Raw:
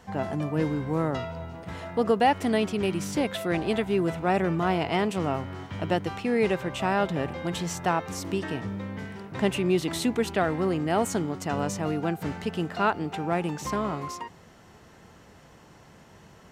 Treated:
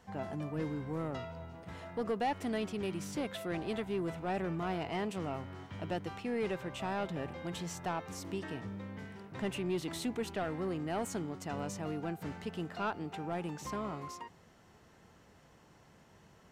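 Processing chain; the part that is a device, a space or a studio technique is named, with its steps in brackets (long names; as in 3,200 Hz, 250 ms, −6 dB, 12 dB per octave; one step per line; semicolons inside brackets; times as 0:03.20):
saturation between pre-emphasis and de-emphasis (high-shelf EQ 6,400 Hz +11.5 dB; soft clipping −17.5 dBFS, distortion −16 dB; high-shelf EQ 6,400 Hz −11.5 dB)
level −9 dB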